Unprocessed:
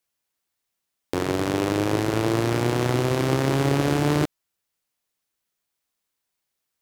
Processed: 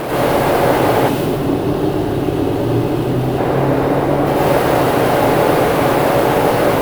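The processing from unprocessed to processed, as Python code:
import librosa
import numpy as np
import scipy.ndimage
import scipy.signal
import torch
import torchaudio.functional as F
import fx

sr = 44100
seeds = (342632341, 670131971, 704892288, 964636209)

y = fx.bin_compress(x, sr, power=0.2)
y = fx.over_compress(y, sr, threshold_db=-26.0, ratio=-0.5)
y = fx.fuzz(y, sr, gain_db=52.0, gate_db=-52.0)
y = fx.peak_eq(y, sr, hz=6600.0, db=-11.5, octaves=1.3)
y = fx.dereverb_blind(y, sr, rt60_s=0.84)
y = fx.peak_eq(y, sr, hz=620.0, db=9.0, octaves=1.4)
y = fx.rev_plate(y, sr, seeds[0], rt60_s=2.8, hf_ratio=0.55, predelay_ms=80, drr_db=-10.0)
y = fx.spec_box(y, sr, start_s=1.09, length_s=2.3, low_hz=430.0, high_hz=2500.0, gain_db=-7)
y = y * librosa.db_to_amplitude(-11.5)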